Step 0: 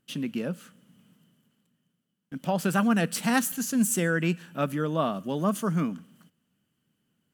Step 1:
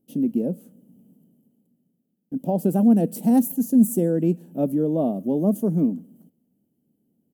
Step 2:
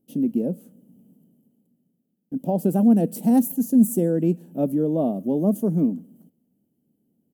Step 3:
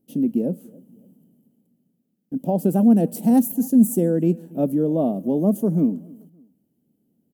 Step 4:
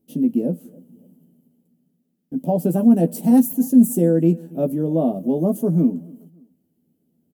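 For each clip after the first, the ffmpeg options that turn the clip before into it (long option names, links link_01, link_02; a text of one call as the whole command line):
ffmpeg -i in.wav -af "firequalizer=gain_entry='entry(130,0);entry(250,10);entry(790,0);entry(1200,-23);entry(13000,4)':delay=0.05:min_phase=1" out.wav
ffmpeg -i in.wav -af anull out.wav
ffmpeg -i in.wav -filter_complex "[0:a]asplit=2[link_01][link_02];[link_02]adelay=284,lowpass=frequency=1900:poles=1,volume=-24dB,asplit=2[link_03][link_04];[link_04]adelay=284,lowpass=frequency=1900:poles=1,volume=0.34[link_05];[link_01][link_03][link_05]amix=inputs=3:normalize=0,volume=1.5dB" out.wav
ffmpeg -i in.wav -filter_complex "[0:a]asplit=2[link_01][link_02];[link_02]adelay=12,volume=-5dB[link_03];[link_01][link_03]amix=inputs=2:normalize=0" out.wav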